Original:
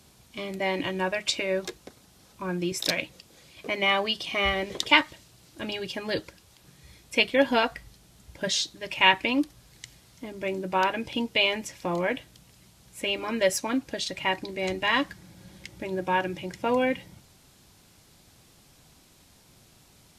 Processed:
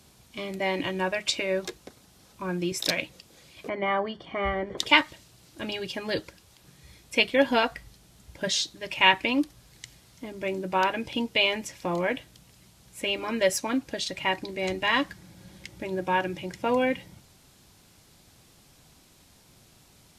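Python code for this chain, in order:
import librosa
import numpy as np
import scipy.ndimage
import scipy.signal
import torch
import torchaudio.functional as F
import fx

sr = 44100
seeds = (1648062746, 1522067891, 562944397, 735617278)

y = fx.savgol(x, sr, points=41, at=(3.68, 4.77), fade=0.02)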